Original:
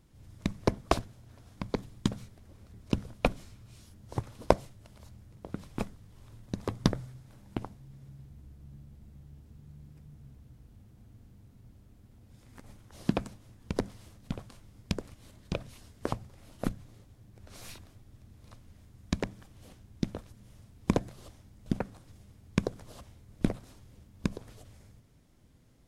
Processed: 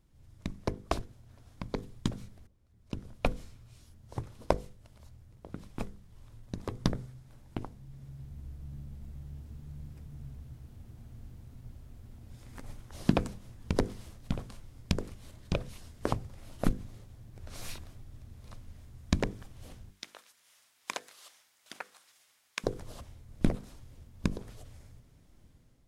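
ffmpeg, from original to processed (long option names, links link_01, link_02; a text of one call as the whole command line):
ffmpeg -i in.wav -filter_complex "[0:a]asettb=1/sr,asplit=3[link_01][link_02][link_03];[link_01]atrim=end=19.904[link_04];[link_02]atrim=start=19.9:end=22.64,asetpts=PTS-STARTPTS,afade=type=in:duration=0.004:curve=qsin,afade=type=out:start_time=2.736:duration=0.004:curve=qsin,highpass=1400[link_05];[link_03]atrim=start=22.636[link_06];[link_04][link_05]acrossfade=duration=0.004:curve1=hsin:curve2=qsin[link_07];[link_07][link_06]acrossfade=duration=0.004:curve1=qsin:curve2=hsin,asplit=2[link_08][link_09];[link_08]atrim=end=2.47,asetpts=PTS-STARTPTS,afade=type=out:start_time=2.466:duration=0.004:curve=hsin:silence=0.125893[link_10];[link_09]atrim=start=2.47,asetpts=PTS-STARTPTS,afade=type=in:duration=0.91:curve=qua:silence=0.125893[link_11];[link_10][link_11]concat=n=2:v=0:a=1,lowshelf=frequency=63:gain=8,bandreject=frequency=50:width_type=h:width=6,bandreject=frequency=100:width_type=h:width=6,bandreject=frequency=150:width_type=h:width=6,bandreject=frequency=200:width_type=h:width=6,bandreject=frequency=250:width_type=h:width=6,bandreject=frequency=300:width_type=h:width=6,bandreject=frequency=350:width_type=h:width=6,bandreject=frequency=400:width_type=h:width=6,bandreject=frequency=450:width_type=h:width=6,bandreject=frequency=500:width_type=h:width=6,dynaudnorm=framelen=770:gausssize=3:maxgain=11.5dB,volume=-6.5dB" out.wav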